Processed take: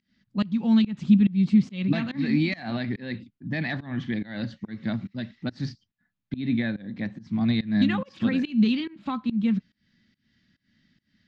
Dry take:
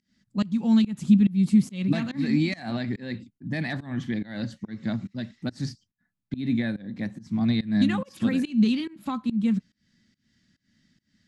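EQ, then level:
low-pass filter 4,100 Hz 12 dB per octave
high-frequency loss of the air 120 metres
high-shelf EQ 2,400 Hz +9 dB
0.0 dB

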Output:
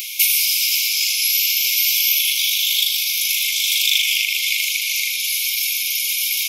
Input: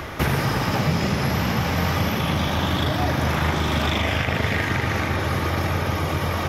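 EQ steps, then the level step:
linear-phase brick-wall high-pass 2,100 Hz
spectral tilt +4.5 dB per octave
high-shelf EQ 5,700 Hz +5 dB
+3.0 dB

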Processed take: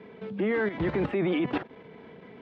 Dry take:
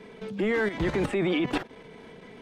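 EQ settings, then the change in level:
high-pass filter 76 Hz
high-frequency loss of the air 300 metres
0.0 dB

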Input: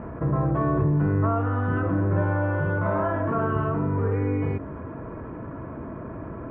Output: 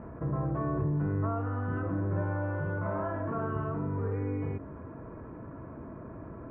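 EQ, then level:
high-frequency loss of the air 270 metres
−7.5 dB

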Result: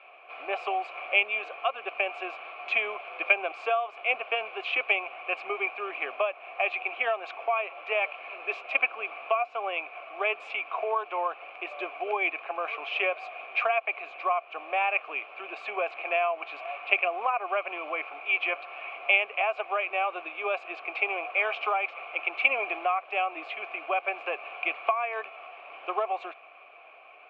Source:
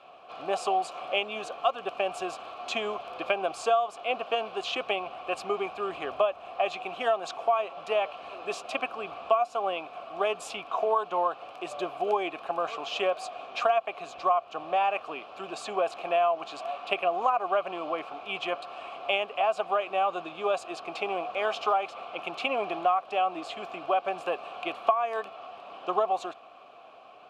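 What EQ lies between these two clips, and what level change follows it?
high-pass filter 340 Hz 24 dB per octave
low-pass with resonance 2,300 Hz, resonance Q 6.7
−4.0 dB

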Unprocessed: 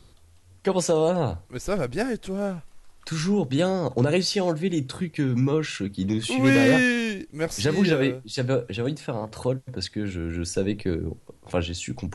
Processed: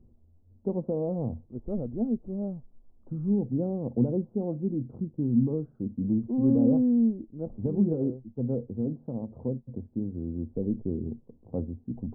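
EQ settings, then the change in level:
Gaussian smoothing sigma 14 samples
parametric band 230 Hz +13 dB 0.23 octaves
−5.0 dB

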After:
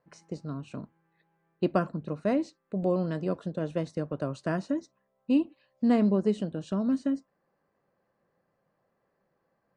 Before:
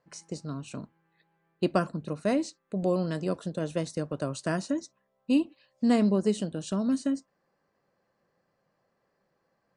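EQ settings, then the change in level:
high-shelf EQ 3,800 Hz −10 dB
high-shelf EQ 7,600 Hz −11.5 dB
0.0 dB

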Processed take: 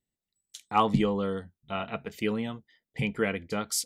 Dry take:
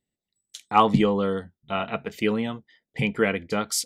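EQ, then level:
low-shelf EQ 95 Hz +7.5 dB
high-shelf EQ 6,500 Hz +5 dB
−6.0 dB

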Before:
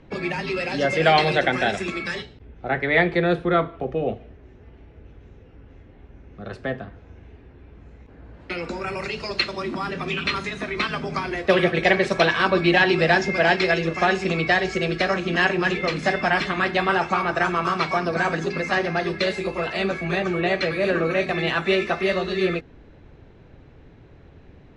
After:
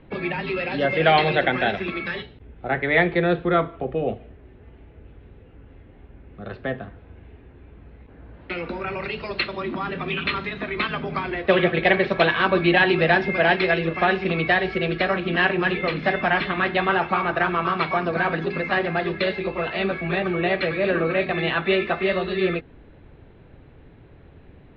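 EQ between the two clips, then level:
Butterworth low-pass 3,900 Hz 36 dB per octave
0.0 dB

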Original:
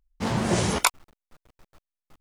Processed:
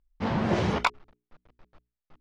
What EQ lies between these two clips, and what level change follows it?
high-frequency loss of the air 240 metres
mains-hum notches 60/120/180/240/300/360/420 Hz
0.0 dB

